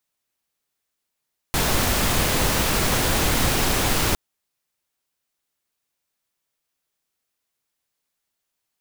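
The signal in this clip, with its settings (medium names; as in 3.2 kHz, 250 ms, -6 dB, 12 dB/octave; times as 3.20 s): noise pink, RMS -20.5 dBFS 2.61 s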